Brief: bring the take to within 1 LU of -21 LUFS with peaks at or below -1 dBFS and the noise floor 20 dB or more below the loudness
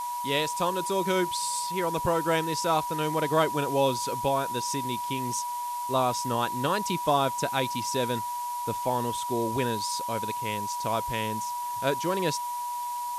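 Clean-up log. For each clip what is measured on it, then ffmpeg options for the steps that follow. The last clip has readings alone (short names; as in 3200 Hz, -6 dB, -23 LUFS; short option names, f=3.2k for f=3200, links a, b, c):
steady tone 970 Hz; tone level -30 dBFS; noise floor -33 dBFS; noise floor target -48 dBFS; loudness -28.0 LUFS; peak -11.5 dBFS; loudness target -21.0 LUFS
-> -af "bandreject=f=970:w=30"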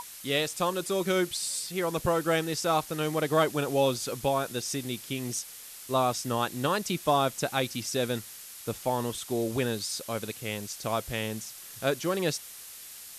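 steady tone none; noise floor -45 dBFS; noise floor target -50 dBFS
-> -af "afftdn=nr=6:nf=-45"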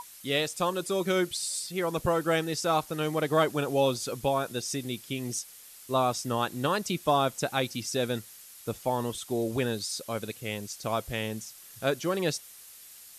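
noise floor -50 dBFS; loudness -29.5 LUFS; peak -12.5 dBFS; loudness target -21.0 LUFS
-> -af "volume=8.5dB"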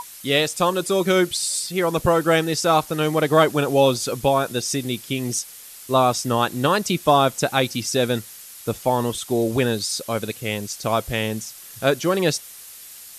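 loudness -21.0 LUFS; peak -4.0 dBFS; noise floor -41 dBFS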